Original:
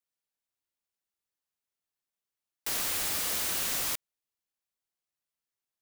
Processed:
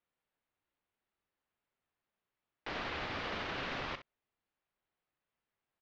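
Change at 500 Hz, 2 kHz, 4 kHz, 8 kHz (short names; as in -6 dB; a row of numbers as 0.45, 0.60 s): +1.5, -1.5, -8.5, -31.5 dB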